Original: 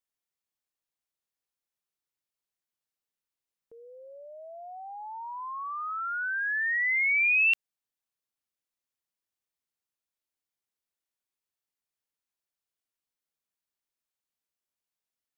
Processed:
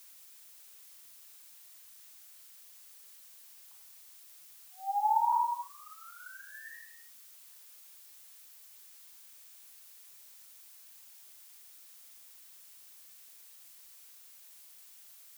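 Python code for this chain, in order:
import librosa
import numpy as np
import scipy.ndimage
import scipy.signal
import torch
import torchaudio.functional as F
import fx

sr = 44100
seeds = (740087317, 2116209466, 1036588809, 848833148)

y = fx.gate_flip(x, sr, shuts_db=-35.0, range_db=-34)
y = fx.brickwall_bandpass(y, sr, low_hz=780.0, high_hz=1900.0)
y = fx.rev_gated(y, sr, seeds[0], gate_ms=370, shape='falling', drr_db=-4.0)
y = fx.dmg_noise_colour(y, sr, seeds[1], colour='blue', level_db=-64.0)
y = y * 10.0 ** (9.0 / 20.0)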